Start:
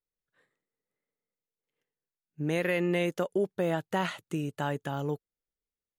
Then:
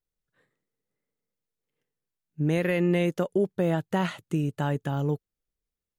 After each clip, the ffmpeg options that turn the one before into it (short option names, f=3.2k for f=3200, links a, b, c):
-af "lowshelf=f=270:g=10"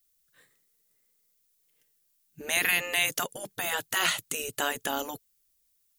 -af "afftfilt=real='re*lt(hypot(re,im),0.178)':imag='im*lt(hypot(re,im),0.178)':win_size=1024:overlap=0.75,crystalizer=i=8.5:c=0"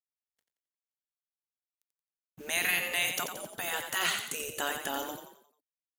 -filter_complex "[0:a]acrusher=bits=7:mix=0:aa=0.5,asplit=6[a][b][c][d][e][f];[b]adelay=88,afreqshift=31,volume=-7dB[g];[c]adelay=176,afreqshift=62,volume=-14.3dB[h];[d]adelay=264,afreqshift=93,volume=-21.7dB[i];[e]adelay=352,afreqshift=124,volume=-29dB[j];[f]adelay=440,afreqshift=155,volume=-36.3dB[k];[a][g][h][i][j][k]amix=inputs=6:normalize=0,volume=-4dB"